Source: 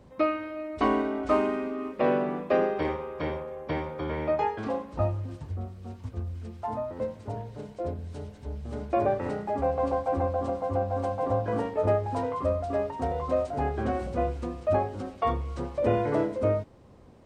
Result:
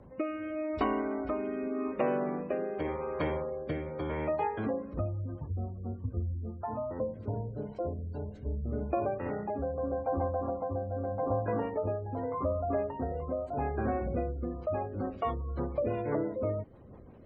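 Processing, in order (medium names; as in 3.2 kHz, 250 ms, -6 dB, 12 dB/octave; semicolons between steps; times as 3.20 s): spectral gate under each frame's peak -30 dB strong; compression 3:1, threshold -32 dBFS, peak gain reduction 10 dB; rotary cabinet horn 0.85 Hz, later 6 Hz, at 14.45 s; trim +3.5 dB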